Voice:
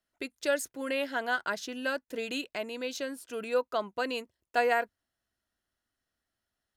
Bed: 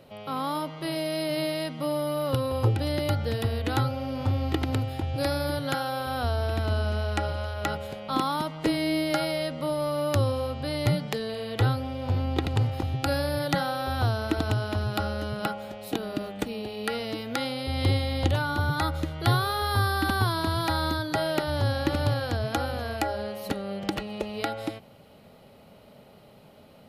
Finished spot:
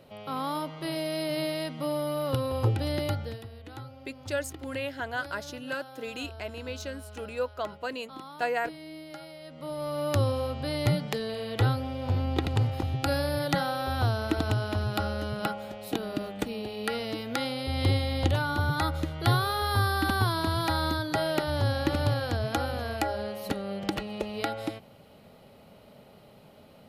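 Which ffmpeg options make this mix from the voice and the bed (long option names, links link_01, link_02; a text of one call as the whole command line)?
ffmpeg -i stem1.wav -i stem2.wav -filter_complex "[0:a]adelay=3850,volume=-2.5dB[link_01];[1:a]volume=14dB,afade=type=out:start_time=3.02:duration=0.43:silence=0.177828,afade=type=in:start_time=9.42:duration=0.79:silence=0.158489[link_02];[link_01][link_02]amix=inputs=2:normalize=0" out.wav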